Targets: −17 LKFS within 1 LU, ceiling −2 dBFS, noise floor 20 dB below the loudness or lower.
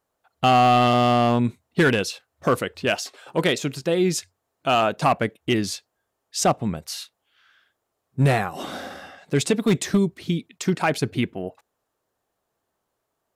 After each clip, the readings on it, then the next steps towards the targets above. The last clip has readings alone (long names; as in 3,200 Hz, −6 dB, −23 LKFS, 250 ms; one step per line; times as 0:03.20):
share of clipped samples 1.1%; peaks flattened at −12.0 dBFS; integrated loudness −22.5 LKFS; sample peak −12.0 dBFS; target loudness −17.0 LKFS
→ clipped peaks rebuilt −12 dBFS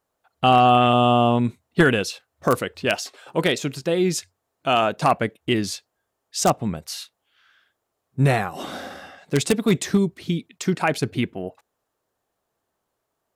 share of clipped samples 0.0%; integrated loudness −21.5 LKFS; sample peak −3.0 dBFS; target loudness −17.0 LKFS
→ level +4.5 dB
brickwall limiter −2 dBFS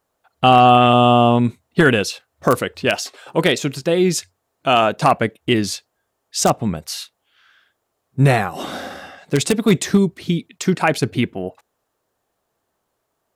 integrated loudness −17.5 LKFS; sample peak −2.0 dBFS; background noise floor −74 dBFS